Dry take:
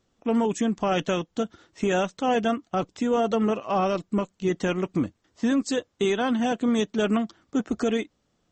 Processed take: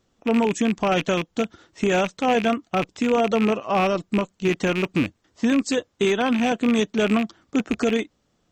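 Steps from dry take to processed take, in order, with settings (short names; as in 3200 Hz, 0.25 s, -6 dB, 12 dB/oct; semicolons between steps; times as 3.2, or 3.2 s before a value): rattling part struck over -31 dBFS, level -20 dBFS; gain +3 dB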